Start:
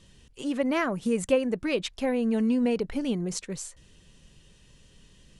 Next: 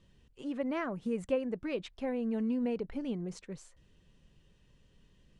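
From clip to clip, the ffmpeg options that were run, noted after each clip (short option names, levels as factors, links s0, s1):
-af "lowpass=f=2000:p=1,volume=0.422"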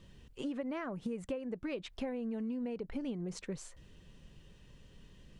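-af "acompressor=threshold=0.00794:ratio=12,volume=2.24"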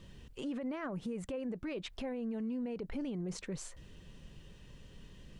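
-af "alimiter=level_in=3.76:limit=0.0631:level=0:latency=1:release=18,volume=0.266,volume=1.5"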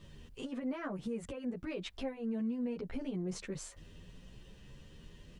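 -filter_complex "[0:a]asplit=2[s0][s1];[s1]adelay=10.4,afreqshift=0.81[s2];[s0][s2]amix=inputs=2:normalize=1,volume=1.41"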